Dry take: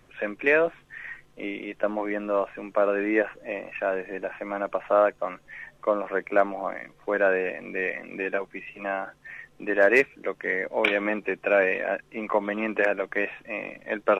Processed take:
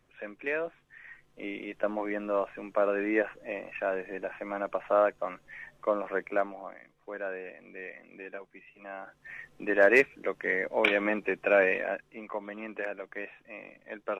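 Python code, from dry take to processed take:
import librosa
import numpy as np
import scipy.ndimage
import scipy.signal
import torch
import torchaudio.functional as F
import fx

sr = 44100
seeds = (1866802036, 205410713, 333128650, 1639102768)

y = fx.gain(x, sr, db=fx.line((1.05, -11.0), (1.54, -4.0), (6.21, -4.0), (6.76, -14.0), (8.87, -14.0), (9.36, -2.0), (11.74, -2.0), (12.28, -12.0)))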